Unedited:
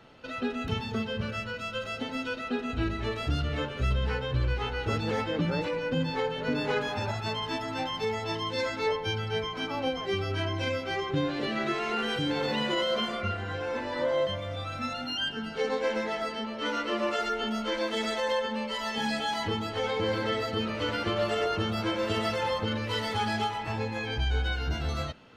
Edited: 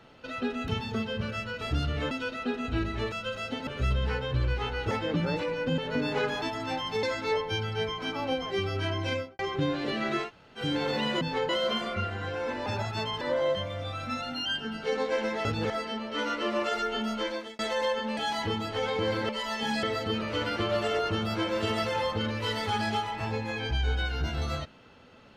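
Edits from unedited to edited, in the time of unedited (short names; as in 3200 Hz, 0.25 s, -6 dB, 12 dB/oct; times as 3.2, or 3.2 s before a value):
1.61–2.16 swap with 3.17–3.67
4.91–5.16 move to 16.17
6.03–6.31 move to 12.76
6.95–7.5 move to 13.93
8.11–8.58 cut
10.67–10.94 studio fade out
11.81–12.15 room tone, crossfade 0.10 s
17.67–18.06 fade out
18.64–19.18 move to 20.3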